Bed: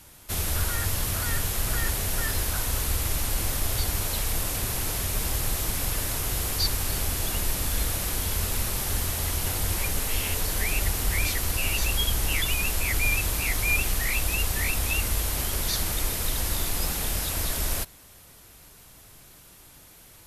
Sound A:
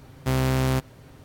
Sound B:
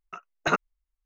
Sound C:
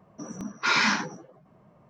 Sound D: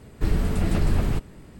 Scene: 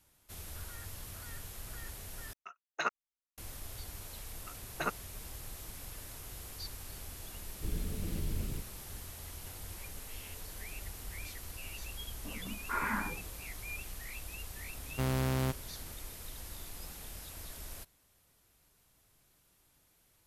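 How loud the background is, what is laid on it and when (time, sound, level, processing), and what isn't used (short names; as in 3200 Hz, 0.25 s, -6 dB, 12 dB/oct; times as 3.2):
bed -18.5 dB
2.33 replace with B -7 dB + HPF 890 Hz 6 dB/oct
4.34 add B -11 dB
7.41 add D -15 dB + band shelf 1100 Hz -12.5 dB
12.06 add C -9 dB + LPF 1800 Hz 24 dB/oct
14.72 add A -9 dB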